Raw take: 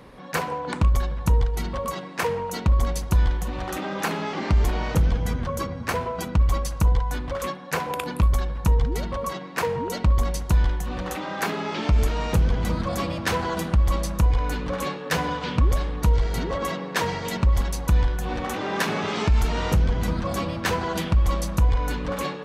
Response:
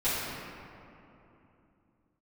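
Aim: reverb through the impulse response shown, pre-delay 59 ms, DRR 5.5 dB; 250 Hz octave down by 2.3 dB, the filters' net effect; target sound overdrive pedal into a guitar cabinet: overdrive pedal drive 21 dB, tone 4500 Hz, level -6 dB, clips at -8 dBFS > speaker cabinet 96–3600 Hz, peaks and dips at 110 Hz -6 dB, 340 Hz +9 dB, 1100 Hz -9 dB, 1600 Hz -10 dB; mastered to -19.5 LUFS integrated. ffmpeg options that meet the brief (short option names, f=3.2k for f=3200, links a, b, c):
-filter_complex "[0:a]equalizer=f=250:t=o:g=-7,asplit=2[a][b];[1:a]atrim=start_sample=2205,adelay=59[c];[b][c]afir=irnorm=-1:irlink=0,volume=-17dB[d];[a][d]amix=inputs=2:normalize=0,asplit=2[e][f];[f]highpass=f=720:p=1,volume=21dB,asoftclip=type=tanh:threshold=-8dB[g];[e][g]amix=inputs=2:normalize=0,lowpass=f=4.5k:p=1,volume=-6dB,highpass=96,equalizer=f=110:t=q:w=4:g=-6,equalizer=f=340:t=q:w=4:g=9,equalizer=f=1.1k:t=q:w=4:g=-9,equalizer=f=1.6k:t=q:w=4:g=-10,lowpass=f=3.6k:w=0.5412,lowpass=f=3.6k:w=1.3066,volume=2.5dB"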